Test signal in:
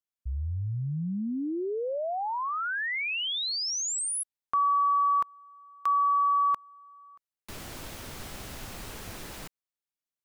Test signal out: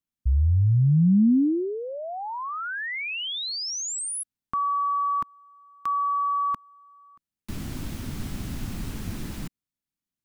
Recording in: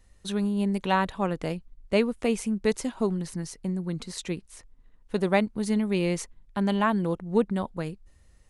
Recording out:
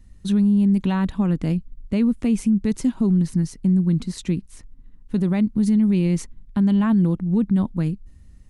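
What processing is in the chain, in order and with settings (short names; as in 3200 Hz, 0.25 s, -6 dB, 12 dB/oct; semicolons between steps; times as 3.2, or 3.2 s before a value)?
resonant low shelf 350 Hz +11 dB, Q 1.5; limiter -12.5 dBFS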